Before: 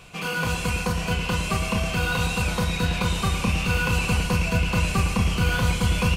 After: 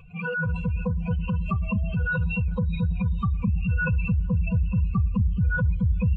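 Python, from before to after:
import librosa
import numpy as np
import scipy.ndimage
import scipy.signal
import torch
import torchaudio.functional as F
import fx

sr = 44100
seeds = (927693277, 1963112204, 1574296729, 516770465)

y = fx.spec_expand(x, sr, power=3.1)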